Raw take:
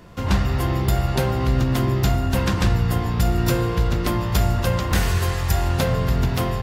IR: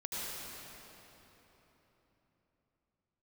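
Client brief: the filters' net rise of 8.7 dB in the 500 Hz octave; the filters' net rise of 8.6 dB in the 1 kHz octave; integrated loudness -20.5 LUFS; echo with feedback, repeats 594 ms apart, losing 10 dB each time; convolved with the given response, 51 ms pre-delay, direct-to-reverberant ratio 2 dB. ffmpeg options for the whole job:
-filter_complex "[0:a]equalizer=f=500:t=o:g=8.5,equalizer=f=1000:t=o:g=8,aecho=1:1:594|1188|1782|2376:0.316|0.101|0.0324|0.0104,asplit=2[s0][s1];[1:a]atrim=start_sample=2205,adelay=51[s2];[s1][s2]afir=irnorm=-1:irlink=0,volume=0.531[s3];[s0][s3]amix=inputs=2:normalize=0,volume=0.631"

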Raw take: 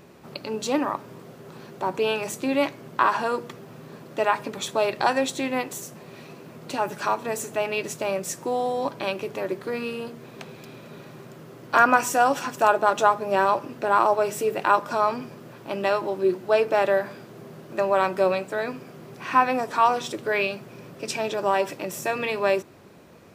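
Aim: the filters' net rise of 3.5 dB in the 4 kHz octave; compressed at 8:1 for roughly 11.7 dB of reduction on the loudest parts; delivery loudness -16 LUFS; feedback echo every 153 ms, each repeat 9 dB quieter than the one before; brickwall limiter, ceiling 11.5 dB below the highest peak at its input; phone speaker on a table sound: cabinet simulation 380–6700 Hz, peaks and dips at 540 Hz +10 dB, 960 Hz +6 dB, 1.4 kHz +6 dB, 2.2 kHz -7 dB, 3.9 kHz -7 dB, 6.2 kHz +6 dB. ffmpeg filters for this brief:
-af "equalizer=f=4000:t=o:g=8.5,acompressor=threshold=0.0631:ratio=8,alimiter=limit=0.119:level=0:latency=1,highpass=f=380:w=0.5412,highpass=f=380:w=1.3066,equalizer=f=540:t=q:w=4:g=10,equalizer=f=960:t=q:w=4:g=6,equalizer=f=1400:t=q:w=4:g=6,equalizer=f=2200:t=q:w=4:g=-7,equalizer=f=3900:t=q:w=4:g=-7,equalizer=f=6200:t=q:w=4:g=6,lowpass=f=6700:w=0.5412,lowpass=f=6700:w=1.3066,aecho=1:1:153|306|459|612:0.355|0.124|0.0435|0.0152,volume=3.55"

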